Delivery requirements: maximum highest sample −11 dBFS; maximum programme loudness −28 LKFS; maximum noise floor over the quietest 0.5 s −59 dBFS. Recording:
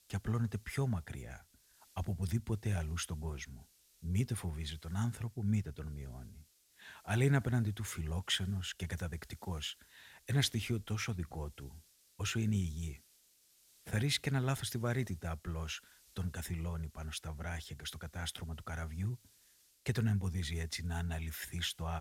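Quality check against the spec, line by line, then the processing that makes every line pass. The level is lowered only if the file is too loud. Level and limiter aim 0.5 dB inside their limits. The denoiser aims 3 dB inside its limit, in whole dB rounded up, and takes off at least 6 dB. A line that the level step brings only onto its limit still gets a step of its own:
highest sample −18.0 dBFS: in spec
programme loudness −38.0 LKFS: in spec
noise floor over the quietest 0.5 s −68 dBFS: in spec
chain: no processing needed

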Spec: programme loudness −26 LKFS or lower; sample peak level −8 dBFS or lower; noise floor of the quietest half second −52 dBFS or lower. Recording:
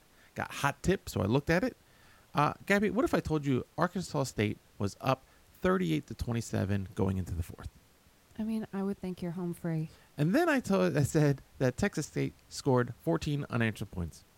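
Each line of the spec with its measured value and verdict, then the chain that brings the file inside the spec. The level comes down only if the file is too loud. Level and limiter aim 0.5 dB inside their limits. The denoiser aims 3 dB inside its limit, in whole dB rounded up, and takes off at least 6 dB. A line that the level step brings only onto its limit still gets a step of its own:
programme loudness −32.0 LKFS: in spec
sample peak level −11.5 dBFS: in spec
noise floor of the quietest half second −63 dBFS: in spec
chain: no processing needed

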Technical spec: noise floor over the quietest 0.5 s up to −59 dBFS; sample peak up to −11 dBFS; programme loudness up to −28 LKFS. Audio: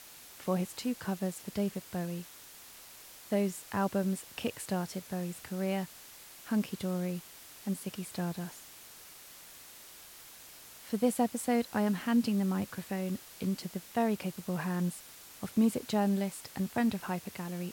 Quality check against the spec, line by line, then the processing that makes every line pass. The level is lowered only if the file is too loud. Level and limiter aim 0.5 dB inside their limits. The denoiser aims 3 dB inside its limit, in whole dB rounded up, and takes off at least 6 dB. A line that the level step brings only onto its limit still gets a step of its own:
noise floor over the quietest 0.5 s −52 dBFS: out of spec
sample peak −15.5 dBFS: in spec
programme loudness −34.0 LKFS: in spec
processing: broadband denoise 10 dB, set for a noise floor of −52 dBFS

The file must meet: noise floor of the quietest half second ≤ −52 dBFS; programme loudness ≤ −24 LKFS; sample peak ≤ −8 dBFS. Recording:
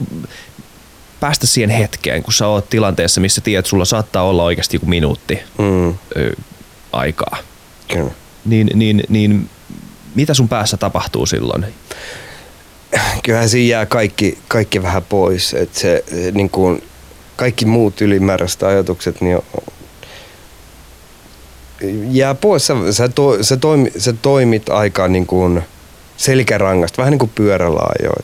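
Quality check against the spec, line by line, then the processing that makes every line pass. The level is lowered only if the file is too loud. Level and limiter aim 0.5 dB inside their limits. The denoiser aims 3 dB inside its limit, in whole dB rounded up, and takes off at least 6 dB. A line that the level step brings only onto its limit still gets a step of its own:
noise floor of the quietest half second −41 dBFS: out of spec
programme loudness −14.5 LKFS: out of spec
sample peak −1.5 dBFS: out of spec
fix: broadband denoise 6 dB, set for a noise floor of −41 dBFS
level −10 dB

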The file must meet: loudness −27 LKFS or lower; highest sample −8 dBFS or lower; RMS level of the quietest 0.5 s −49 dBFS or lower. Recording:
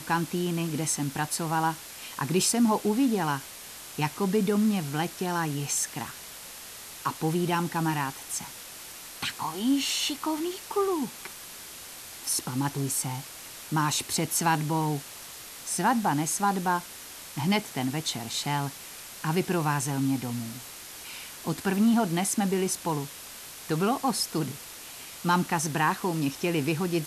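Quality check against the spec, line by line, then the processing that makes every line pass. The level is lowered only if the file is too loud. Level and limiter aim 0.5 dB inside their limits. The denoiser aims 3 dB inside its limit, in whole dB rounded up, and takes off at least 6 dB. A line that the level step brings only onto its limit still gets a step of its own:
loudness −28.0 LKFS: in spec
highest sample −12.0 dBFS: in spec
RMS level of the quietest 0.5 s −43 dBFS: out of spec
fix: broadband denoise 9 dB, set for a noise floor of −43 dBFS

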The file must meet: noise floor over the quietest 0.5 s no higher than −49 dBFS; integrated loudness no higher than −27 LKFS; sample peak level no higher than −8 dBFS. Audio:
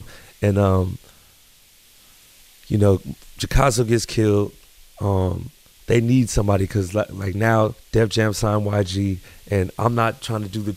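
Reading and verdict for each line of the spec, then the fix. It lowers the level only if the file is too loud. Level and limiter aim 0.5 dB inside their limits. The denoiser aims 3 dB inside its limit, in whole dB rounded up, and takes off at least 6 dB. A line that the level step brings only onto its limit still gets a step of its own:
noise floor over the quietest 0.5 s −52 dBFS: in spec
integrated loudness −20.5 LKFS: out of spec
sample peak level −3.5 dBFS: out of spec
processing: level −7 dB

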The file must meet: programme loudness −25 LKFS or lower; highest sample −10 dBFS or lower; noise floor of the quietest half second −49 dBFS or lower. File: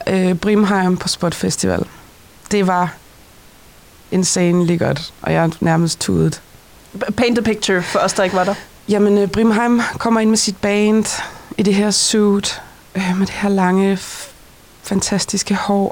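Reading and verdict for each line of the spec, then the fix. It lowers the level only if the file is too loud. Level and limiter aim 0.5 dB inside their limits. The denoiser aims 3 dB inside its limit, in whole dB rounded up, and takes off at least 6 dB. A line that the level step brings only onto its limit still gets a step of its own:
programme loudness −16.5 LKFS: out of spec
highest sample −5.0 dBFS: out of spec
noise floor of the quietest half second −44 dBFS: out of spec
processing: level −9 dB

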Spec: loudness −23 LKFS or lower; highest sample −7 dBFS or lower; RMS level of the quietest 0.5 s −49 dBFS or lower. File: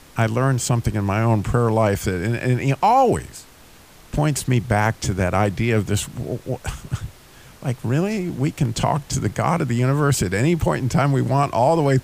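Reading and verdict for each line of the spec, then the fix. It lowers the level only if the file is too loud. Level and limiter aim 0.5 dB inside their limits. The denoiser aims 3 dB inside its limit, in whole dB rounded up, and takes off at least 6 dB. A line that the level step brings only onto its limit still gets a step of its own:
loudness −20.5 LKFS: out of spec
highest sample −3.5 dBFS: out of spec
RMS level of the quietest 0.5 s −47 dBFS: out of spec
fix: level −3 dB
brickwall limiter −7.5 dBFS

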